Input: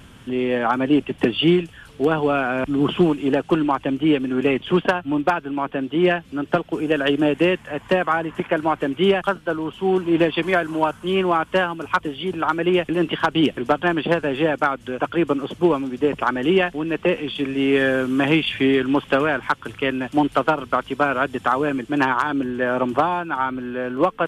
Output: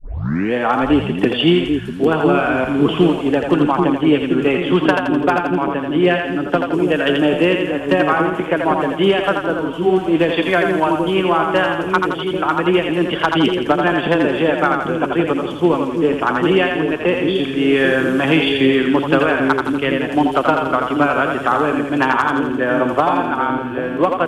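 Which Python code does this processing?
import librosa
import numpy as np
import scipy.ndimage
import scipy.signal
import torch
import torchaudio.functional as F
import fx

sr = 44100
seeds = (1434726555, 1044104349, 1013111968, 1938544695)

y = fx.tape_start_head(x, sr, length_s=0.54)
y = fx.echo_split(y, sr, split_hz=470.0, low_ms=789, high_ms=84, feedback_pct=52, wet_db=-4.0)
y = F.gain(torch.from_numpy(y), 2.5).numpy()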